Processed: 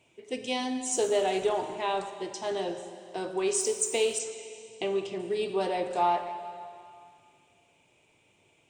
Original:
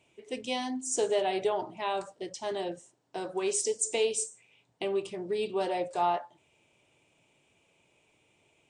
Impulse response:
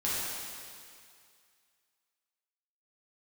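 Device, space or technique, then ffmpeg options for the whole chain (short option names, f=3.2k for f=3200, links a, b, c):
saturated reverb return: -filter_complex "[0:a]asplit=2[a][b];[1:a]atrim=start_sample=2205[c];[b][c]afir=irnorm=-1:irlink=0,asoftclip=type=tanh:threshold=-18dB,volume=-12.5dB[d];[a][d]amix=inputs=2:normalize=0,asplit=3[e][f][g];[e]afade=t=out:st=4.18:d=0.02[h];[f]lowpass=f=7k:w=0.5412,lowpass=f=7k:w=1.3066,afade=t=in:st=4.18:d=0.02,afade=t=out:st=5.18:d=0.02[i];[g]afade=t=in:st=5.18:d=0.02[j];[h][i][j]amix=inputs=3:normalize=0"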